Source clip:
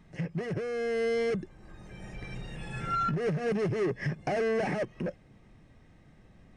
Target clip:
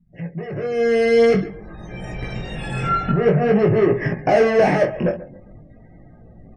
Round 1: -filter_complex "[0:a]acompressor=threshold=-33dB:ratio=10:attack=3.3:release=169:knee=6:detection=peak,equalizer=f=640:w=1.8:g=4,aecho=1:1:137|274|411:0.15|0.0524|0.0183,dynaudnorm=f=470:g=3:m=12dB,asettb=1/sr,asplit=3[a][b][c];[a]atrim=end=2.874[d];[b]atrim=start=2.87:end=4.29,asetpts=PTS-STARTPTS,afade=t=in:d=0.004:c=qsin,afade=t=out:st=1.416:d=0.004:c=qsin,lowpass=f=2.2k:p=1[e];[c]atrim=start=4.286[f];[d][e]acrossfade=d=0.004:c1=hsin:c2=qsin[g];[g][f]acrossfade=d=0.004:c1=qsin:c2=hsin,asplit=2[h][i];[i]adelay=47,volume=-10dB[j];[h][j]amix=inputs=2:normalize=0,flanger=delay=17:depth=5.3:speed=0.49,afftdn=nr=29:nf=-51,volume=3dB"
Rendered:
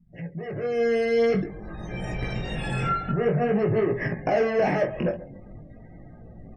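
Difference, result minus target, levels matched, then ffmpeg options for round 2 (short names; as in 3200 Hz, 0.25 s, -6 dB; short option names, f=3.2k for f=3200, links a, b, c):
compressor: peak gain reduction +9 dB
-filter_complex "[0:a]equalizer=f=640:w=1.8:g=4,aecho=1:1:137|274|411:0.15|0.0524|0.0183,dynaudnorm=f=470:g=3:m=12dB,asettb=1/sr,asplit=3[a][b][c];[a]atrim=end=2.874[d];[b]atrim=start=2.87:end=4.29,asetpts=PTS-STARTPTS,afade=t=in:d=0.004:c=qsin,afade=t=out:st=1.416:d=0.004:c=qsin,lowpass=f=2.2k:p=1[e];[c]atrim=start=4.286[f];[d][e]acrossfade=d=0.004:c1=hsin:c2=qsin[g];[g][f]acrossfade=d=0.004:c1=qsin:c2=hsin,asplit=2[h][i];[i]adelay=47,volume=-10dB[j];[h][j]amix=inputs=2:normalize=0,flanger=delay=17:depth=5.3:speed=0.49,afftdn=nr=29:nf=-51,volume=3dB"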